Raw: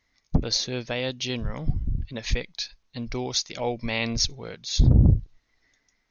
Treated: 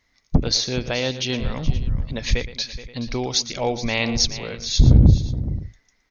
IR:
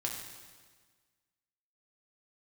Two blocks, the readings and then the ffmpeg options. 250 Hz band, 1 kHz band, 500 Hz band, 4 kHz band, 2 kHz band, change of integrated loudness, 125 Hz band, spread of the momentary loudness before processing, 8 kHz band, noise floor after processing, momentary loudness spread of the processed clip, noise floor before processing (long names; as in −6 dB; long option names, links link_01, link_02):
+5.0 dB, +5.0 dB, +5.0 dB, +5.0 dB, +5.0 dB, +4.5 dB, +5.0 dB, 14 LU, can't be measured, −66 dBFS, 14 LU, −72 dBFS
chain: -af "aecho=1:1:117|424|526:0.188|0.188|0.1,volume=4.5dB"